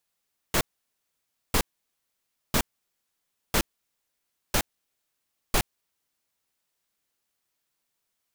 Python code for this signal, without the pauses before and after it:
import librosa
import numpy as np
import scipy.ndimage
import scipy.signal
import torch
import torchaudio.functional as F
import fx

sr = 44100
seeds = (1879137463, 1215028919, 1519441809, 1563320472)

y = fx.noise_burst(sr, seeds[0], colour='pink', on_s=0.07, off_s=0.93, bursts=6, level_db=-22.0)